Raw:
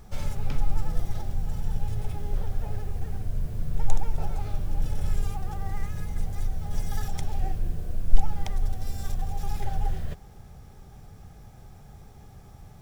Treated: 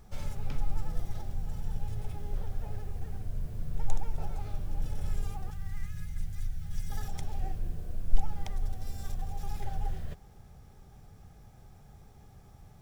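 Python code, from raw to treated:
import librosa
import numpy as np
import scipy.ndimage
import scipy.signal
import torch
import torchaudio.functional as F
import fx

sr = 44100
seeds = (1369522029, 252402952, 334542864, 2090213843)

y = fx.band_shelf(x, sr, hz=510.0, db=-13.0, octaves=2.5, at=(5.5, 6.9))
y = y * 10.0 ** (-6.0 / 20.0)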